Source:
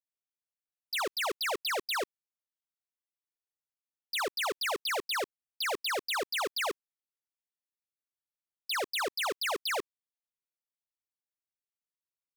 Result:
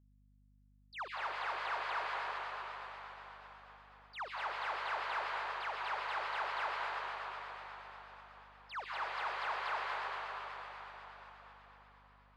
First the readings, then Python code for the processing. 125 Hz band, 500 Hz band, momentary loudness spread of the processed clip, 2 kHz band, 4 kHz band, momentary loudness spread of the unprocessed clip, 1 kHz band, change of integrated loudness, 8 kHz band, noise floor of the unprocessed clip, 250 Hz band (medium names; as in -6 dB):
no reading, -11.0 dB, 17 LU, -4.0 dB, -13.0 dB, 5 LU, -0.5 dB, -7.5 dB, under -20 dB, under -85 dBFS, under -15 dB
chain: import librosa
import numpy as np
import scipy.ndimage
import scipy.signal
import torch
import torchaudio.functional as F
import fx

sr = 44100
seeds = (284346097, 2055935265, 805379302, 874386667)

y = fx.ladder_bandpass(x, sr, hz=1200.0, resonance_pct=35)
y = fx.rev_plate(y, sr, seeds[0], rt60_s=4.9, hf_ratio=0.95, predelay_ms=115, drr_db=-6.0)
y = fx.vibrato(y, sr, rate_hz=8.2, depth_cents=77.0)
y = fx.add_hum(y, sr, base_hz=50, snr_db=25)
y = y * 10.0 ** (1.5 / 20.0)